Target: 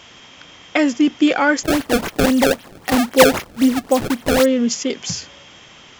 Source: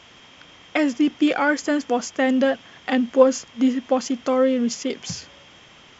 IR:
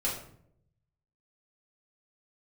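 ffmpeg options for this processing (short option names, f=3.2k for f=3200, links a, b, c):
-filter_complex "[0:a]highshelf=f=6k:g=6.5,asettb=1/sr,asplit=3[a][b][c];[a]atrim=end=1.634[d];[b]atrim=start=1.63:end=4.46,asetpts=PTS-STARTPTS,afade=t=in:d=0.004:c=qsin,afade=t=out:st=2.826:d=0.004:c=qsin,acrusher=samples=26:mix=1:aa=0.000001:lfo=1:lforange=41.6:lforate=3.8[e];[c]atrim=start=4.456[f];[d][e]acrossfade=d=0.004:c1=hsin:c2=qsin[g];[g][f]acrossfade=d=0.004:c1=qsin:c2=hsin,volume=4dB"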